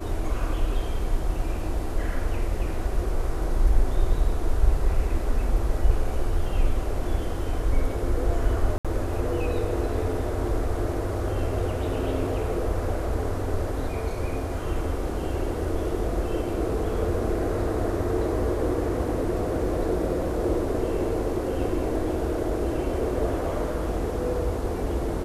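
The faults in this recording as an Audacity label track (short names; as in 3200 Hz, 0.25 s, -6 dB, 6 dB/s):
8.780000	8.850000	gap 66 ms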